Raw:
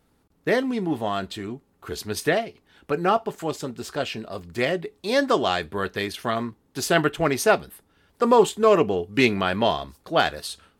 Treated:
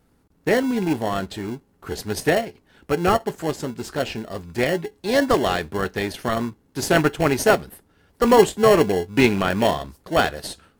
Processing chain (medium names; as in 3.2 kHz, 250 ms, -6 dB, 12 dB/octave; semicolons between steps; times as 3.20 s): rattle on loud lows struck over -26 dBFS, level -24 dBFS; peaking EQ 3.4 kHz -3.5 dB 0.62 oct; in parallel at -7 dB: sample-and-hold 36×; on the sum: trim +1 dB